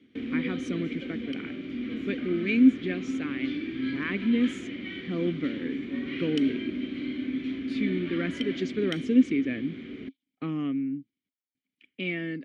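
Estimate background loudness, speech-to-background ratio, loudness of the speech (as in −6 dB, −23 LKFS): −34.5 LKFS, 5.0 dB, −29.5 LKFS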